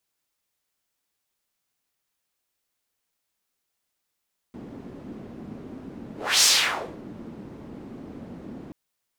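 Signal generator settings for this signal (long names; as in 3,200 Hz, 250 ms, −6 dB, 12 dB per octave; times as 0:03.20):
pass-by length 4.18 s, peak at 0:01.89, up 0.30 s, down 0.60 s, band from 250 Hz, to 5,800 Hz, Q 1.8, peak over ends 23.5 dB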